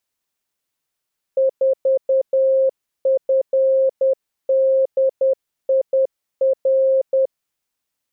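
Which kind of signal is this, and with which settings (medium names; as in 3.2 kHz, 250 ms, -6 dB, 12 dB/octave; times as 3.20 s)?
Morse "4FDIR" 10 wpm 532 Hz -12.5 dBFS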